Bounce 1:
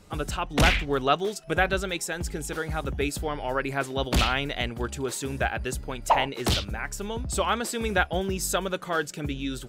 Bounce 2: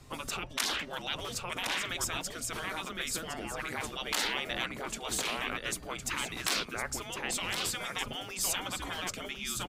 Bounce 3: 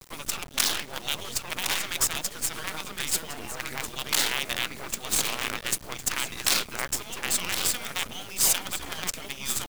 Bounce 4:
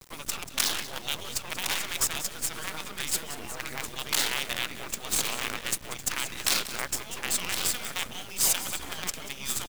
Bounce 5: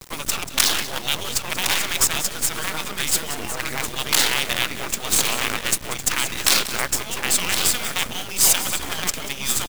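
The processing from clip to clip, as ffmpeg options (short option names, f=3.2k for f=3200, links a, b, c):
-af "afreqshift=-170,aecho=1:1:1060:0.398,afftfilt=real='re*lt(hypot(re,im),0.1)':imag='im*lt(hypot(re,im),0.1)':win_size=1024:overlap=0.75"
-af "highshelf=f=4.2k:g=7,acrusher=bits=5:dc=4:mix=0:aa=0.000001,volume=4dB"
-af "aecho=1:1:186|372:0.2|0.0359,volume=-2dB"
-af "acrusher=bits=2:mode=log:mix=0:aa=0.000001,volume=9dB"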